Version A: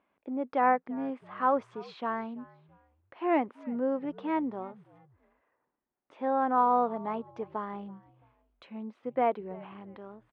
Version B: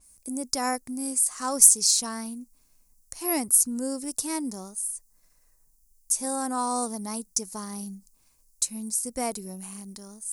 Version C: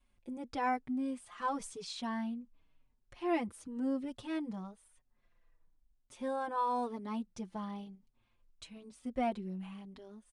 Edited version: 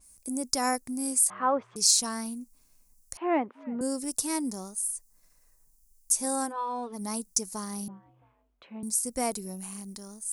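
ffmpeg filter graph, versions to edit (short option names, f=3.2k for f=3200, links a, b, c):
-filter_complex "[0:a]asplit=3[a][b][c];[1:a]asplit=5[d][e][f][g][h];[d]atrim=end=1.302[i];[a]atrim=start=1.298:end=1.762[j];[e]atrim=start=1.758:end=3.172[k];[b]atrim=start=3.168:end=3.812[l];[f]atrim=start=3.808:end=6.53[m];[2:a]atrim=start=6.43:end=7.02[n];[g]atrim=start=6.92:end=7.882[o];[c]atrim=start=7.878:end=8.832[p];[h]atrim=start=8.828[q];[i][j]acrossfade=d=0.004:c1=hsin:c2=hsin[r];[r][k]acrossfade=d=0.004:c1=hsin:c2=hsin[s];[s][l]acrossfade=d=0.004:c1=hsin:c2=hsin[t];[t][m]acrossfade=d=0.004:c1=hsin:c2=hsin[u];[u][n]acrossfade=d=0.1:c1=tri:c2=tri[v];[v][o]acrossfade=d=0.1:c1=tri:c2=tri[w];[w][p]acrossfade=d=0.004:c1=hsin:c2=hsin[x];[x][q]acrossfade=d=0.004:c1=hsin:c2=hsin"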